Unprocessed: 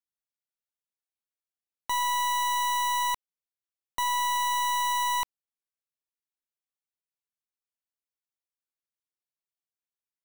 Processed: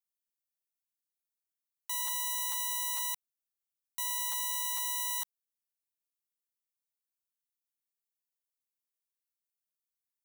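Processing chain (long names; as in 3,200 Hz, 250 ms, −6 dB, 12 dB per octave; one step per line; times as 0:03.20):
high-pass filter 290 Hz
first difference
regular buffer underruns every 0.45 s, samples 512, repeat, from 0:00.71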